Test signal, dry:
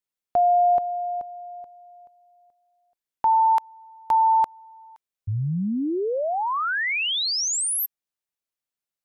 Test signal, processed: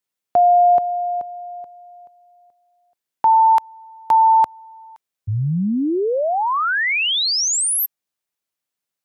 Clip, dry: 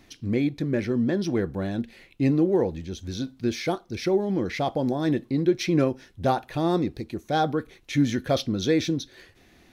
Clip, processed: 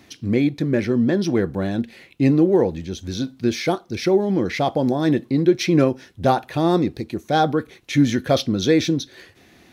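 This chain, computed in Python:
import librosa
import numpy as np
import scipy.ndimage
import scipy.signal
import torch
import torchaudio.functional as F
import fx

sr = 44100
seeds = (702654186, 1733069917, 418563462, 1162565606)

y = scipy.signal.sosfilt(scipy.signal.butter(2, 81.0, 'highpass', fs=sr, output='sos'), x)
y = y * librosa.db_to_amplitude(5.5)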